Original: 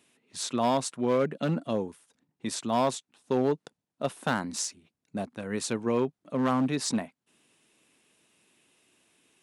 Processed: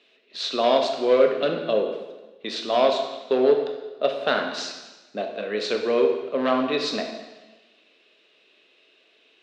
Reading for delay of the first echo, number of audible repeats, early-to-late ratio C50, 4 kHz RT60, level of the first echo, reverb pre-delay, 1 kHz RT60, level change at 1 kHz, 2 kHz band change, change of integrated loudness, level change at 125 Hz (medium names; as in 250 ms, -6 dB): no echo, no echo, 5.5 dB, 1.1 s, no echo, 7 ms, 1.2 s, +4.5 dB, +7.0 dB, +6.5 dB, -10.0 dB